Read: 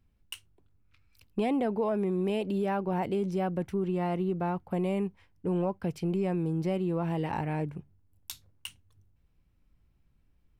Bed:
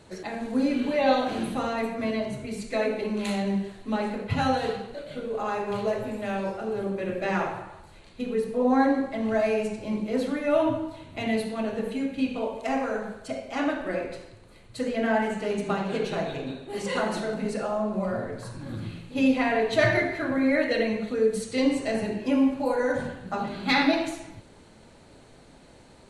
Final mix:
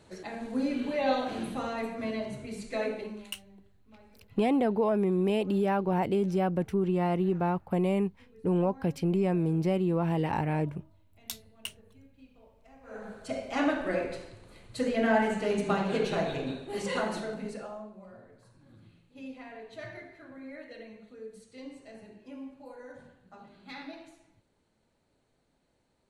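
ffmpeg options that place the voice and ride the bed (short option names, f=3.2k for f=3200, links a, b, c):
-filter_complex "[0:a]adelay=3000,volume=2.5dB[a];[1:a]volume=23.5dB,afade=t=out:st=2.89:d=0.43:silence=0.0630957,afade=t=in:st=12.83:d=0.58:silence=0.0354813,afade=t=out:st=16.52:d=1.43:silence=0.0891251[b];[a][b]amix=inputs=2:normalize=0"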